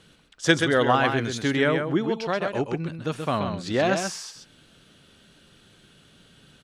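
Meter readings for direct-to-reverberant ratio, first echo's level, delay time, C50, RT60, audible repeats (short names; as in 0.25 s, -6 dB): none, -6.0 dB, 0.13 s, none, none, 1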